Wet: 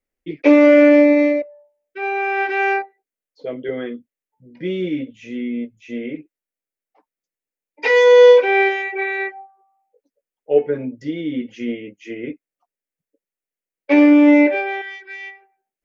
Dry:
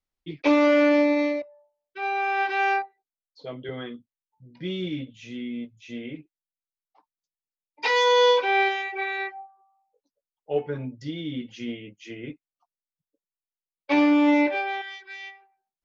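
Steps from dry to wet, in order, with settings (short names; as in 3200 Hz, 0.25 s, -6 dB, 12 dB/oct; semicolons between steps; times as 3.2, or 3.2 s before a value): ten-band EQ 125 Hz -6 dB, 250 Hz +5 dB, 500 Hz +9 dB, 1000 Hz -7 dB, 2000 Hz +7 dB, 4000 Hz -8 dB; gain +3 dB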